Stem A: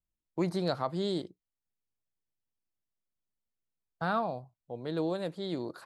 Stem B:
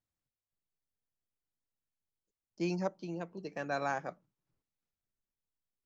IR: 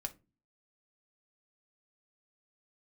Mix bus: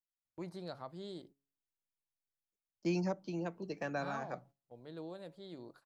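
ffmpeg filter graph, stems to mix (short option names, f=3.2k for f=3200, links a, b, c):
-filter_complex "[0:a]bandreject=f=138.5:t=h:w=4,bandreject=f=277:t=h:w=4,bandreject=f=415.5:t=h:w=4,bandreject=f=554:t=h:w=4,bandreject=f=692.5:t=h:w=4,bandreject=f=831:t=h:w=4,bandreject=f=969.5:t=h:w=4,volume=-15dB,asplit=3[a][b][c];[b]volume=-14.5dB[d];[1:a]acrossover=split=320[e][f];[f]acompressor=threshold=-37dB:ratio=6[g];[e][g]amix=inputs=2:normalize=0,adelay=250,volume=0.5dB,asplit=2[h][i];[i]volume=-15dB[j];[c]apad=whole_len=269209[k];[h][k]sidechaincompress=threshold=-46dB:ratio=8:attack=27:release=113[l];[2:a]atrim=start_sample=2205[m];[d][j]amix=inputs=2:normalize=0[n];[n][m]afir=irnorm=-1:irlink=0[o];[a][l][o]amix=inputs=3:normalize=0,agate=range=-11dB:threshold=-59dB:ratio=16:detection=peak"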